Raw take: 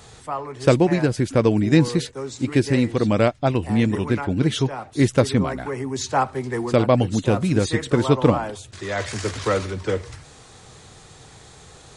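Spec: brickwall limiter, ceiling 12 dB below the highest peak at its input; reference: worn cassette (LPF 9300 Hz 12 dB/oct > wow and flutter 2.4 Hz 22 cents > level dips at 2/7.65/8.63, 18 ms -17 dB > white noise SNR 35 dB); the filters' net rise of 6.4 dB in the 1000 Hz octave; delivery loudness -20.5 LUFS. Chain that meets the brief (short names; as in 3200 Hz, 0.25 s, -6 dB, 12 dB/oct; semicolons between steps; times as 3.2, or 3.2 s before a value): bell 1000 Hz +8.5 dB; limiter -11.5 dBFS; LPF 9300 Hz 12 dB/oct; wow and flutter 2.4 Hz 22 cents; level dips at 2/7.65/8.63, 18 ms -17 dB; white noise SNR 35 dB; gain +3 dB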